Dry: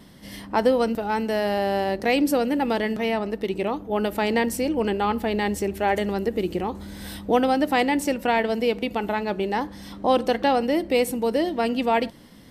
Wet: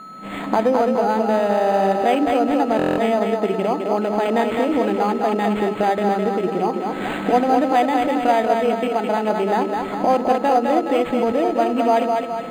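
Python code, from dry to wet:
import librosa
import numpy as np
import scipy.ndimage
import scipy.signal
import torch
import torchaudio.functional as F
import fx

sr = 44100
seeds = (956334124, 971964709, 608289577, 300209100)

p1 = fx.recorder_agc(x, sr, target_db=-13.5, rise_db_per_s=30.0, max_gain_db=30)
p2 = fx.peak_eq(p1, sr, hz=710.0, db=8.0, octaves=0.36)
p3 = p2 + fx.echo_split(p2, sr, split_hz=310.0, low_ms=91, high_ms=210, feedback_pct=52, wet_db=-4, dry=0)
p4 = p3 + 10.0 ** (-34.0 / 20.0) * np.sin(2.0 * np.pi * 1300.0 * np.arange(len(p3)) / sr)
p5 = fx.brickwall_highpass(p4, sr, low_hz=150.0)
p6 = fx.buffer_glitch(p5, sr, at_s=(2.77,), block=1024, repeats=8)
y = np.interp(np.arange(len(p6)), np.arange(len(p6))[::8], p6[::8])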